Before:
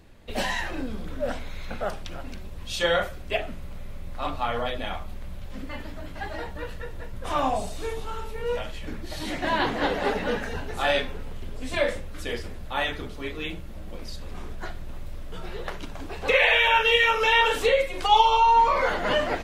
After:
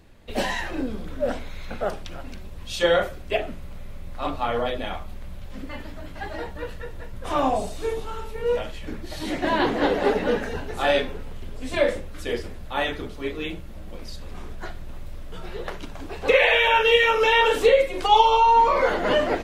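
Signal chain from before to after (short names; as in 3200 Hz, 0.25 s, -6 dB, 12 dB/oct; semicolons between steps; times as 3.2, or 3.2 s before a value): dynamic EQ 370 Hz, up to +7 dB, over -39 dBFS, Q 0.94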